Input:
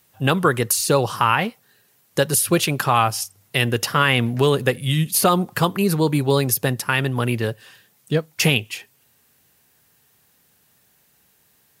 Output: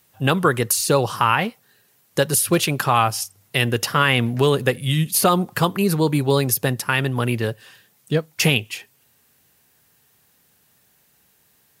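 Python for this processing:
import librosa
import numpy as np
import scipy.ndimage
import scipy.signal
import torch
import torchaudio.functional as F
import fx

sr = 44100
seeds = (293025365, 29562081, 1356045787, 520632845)

y = fx.clip_hard(x, sr, threshold_db=-9.0, at=(2.22, 2.8))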